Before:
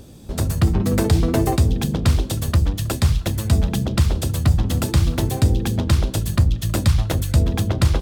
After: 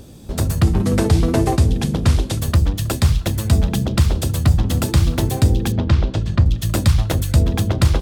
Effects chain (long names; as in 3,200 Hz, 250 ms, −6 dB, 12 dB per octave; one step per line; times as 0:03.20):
0:00.63–0:02.39: variable-slope delta modulation 64 kbit/s
0:05.72–0:06.46: high-frequency loss of the air 160 metres
level +2 dB